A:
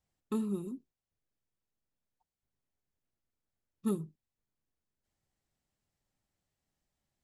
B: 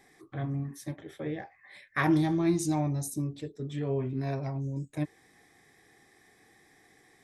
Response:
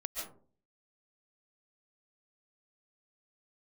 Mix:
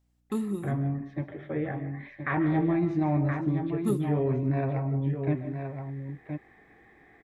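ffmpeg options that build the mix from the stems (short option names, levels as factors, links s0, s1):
-filter_complex "[0:a]aeval=exprs='val(0)+0.000224*(sin(2*PI*60*n/s)+sin(2*PI*2*60*n/s)/2+sin(2*PI*3*60*n/s)/3+sin(2*PI*4*60*n/s)/4+sin(2*PI*5*60*n/s)/5)':c=same,volume=1.33,asplit=2[s0][s1];[s1]volume=0.106[s2];[1:a]lowpass=f=2500:w=0.5412,lowpass=f=2500:w=1.3066,alimiter=limit=0.0668:level=0:latency=1:release=16,adelay=300,volume=1.19,asplit=3[s3][s4][s5];[s4]volume=0.473[s6];[s5]volume=0.596[s7];[2:a]atrim=start_sample=2205[s8];[s2][s6]amix=inputs=2:normalize=0[s9];[s9][s8]afir=irnorm=-1:irlink=0[s10];[s7]aecho=0:1:1022:1[s11];[s0][s3][s10][s11]amix=inputs=4:normalize=0"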